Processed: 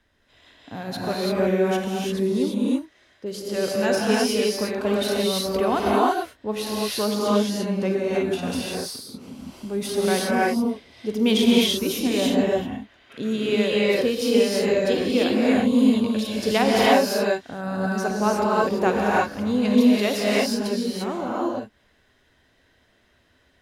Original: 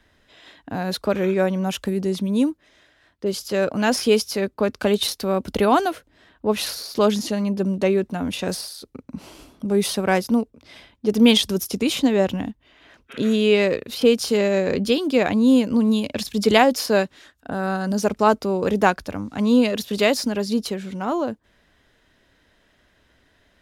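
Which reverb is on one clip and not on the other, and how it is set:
reverb whose tail is shaped and stops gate 370 ms rising, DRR −5.5 dB
level −7.5 dB

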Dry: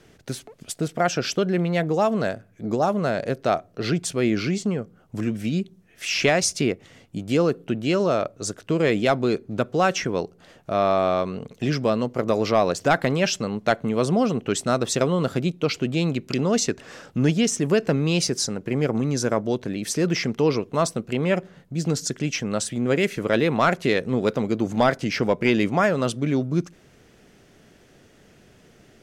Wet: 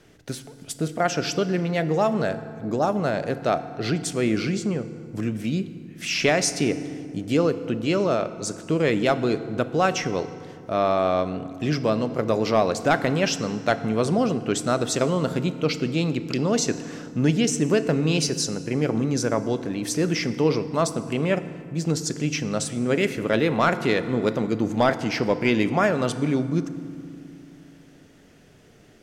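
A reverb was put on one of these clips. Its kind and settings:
feedback delay network reverb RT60 2.3 s, low-frequency decay 1.5×, high-frequency decay 0.6×, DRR 11 dB
level −1 dB

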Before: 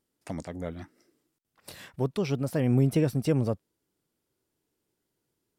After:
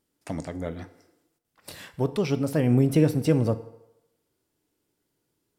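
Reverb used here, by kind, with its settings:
feedback delay network reverb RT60 0.91 s, low-frequency decay 0.7×, high-frequency decay 0.75×, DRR 11 dB
level +3 dB

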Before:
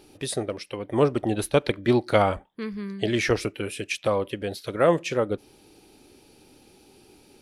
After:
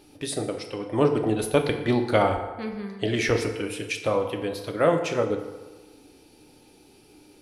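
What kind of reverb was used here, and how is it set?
feedback delay network reverb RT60 1.3 s, low-frequency decay 0.8×, high-frequency decay 0.6×, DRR 4 dB
level −1.5 dB

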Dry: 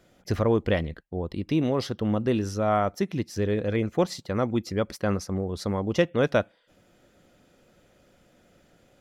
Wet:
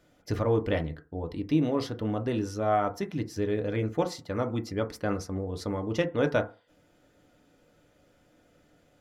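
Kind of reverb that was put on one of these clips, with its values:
feedback delay network reverb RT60 0.32 s, low-frequency decay 0.9×, high-frequency decay 0.3×, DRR 5 dB
level −4.5 dB

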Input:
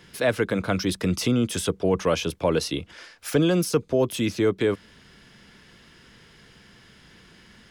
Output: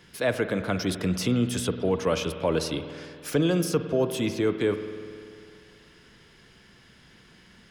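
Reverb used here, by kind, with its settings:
spring reverb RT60 2.4 s, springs 49 ms, chirp 80 ms, DRR 9 dB
level −3 dB

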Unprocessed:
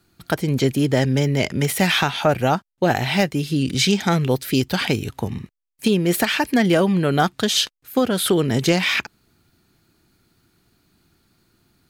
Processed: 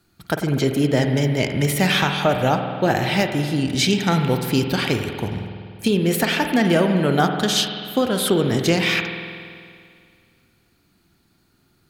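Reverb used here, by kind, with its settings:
spring reverb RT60 2.2 s, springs 48 ms, chirp 40 ms, DRR 5 dB
level −1 dB

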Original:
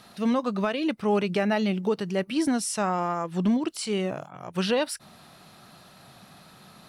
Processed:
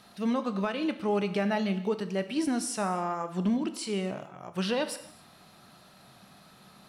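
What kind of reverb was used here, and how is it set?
reverb whose tail is shaped and stops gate 310 ms falling, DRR 9 dB
level −4.5 dB

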